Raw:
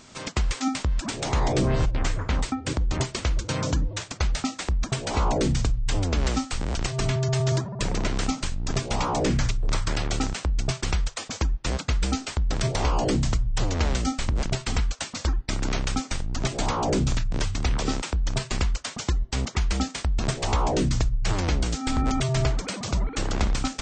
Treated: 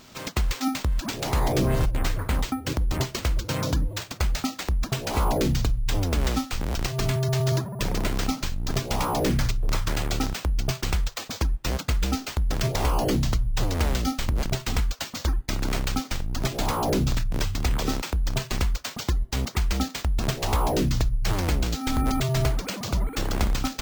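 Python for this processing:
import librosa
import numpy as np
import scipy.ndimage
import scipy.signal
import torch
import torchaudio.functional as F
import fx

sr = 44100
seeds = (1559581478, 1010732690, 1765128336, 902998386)

y = np.repeat(x[::4], 4)[:len(x)]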